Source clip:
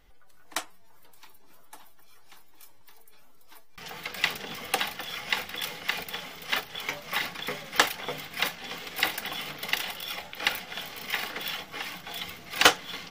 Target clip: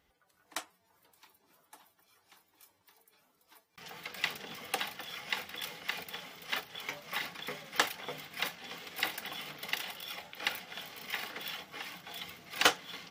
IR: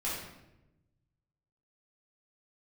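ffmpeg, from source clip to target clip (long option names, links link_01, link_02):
-af "highpass=85,volume=-7dB"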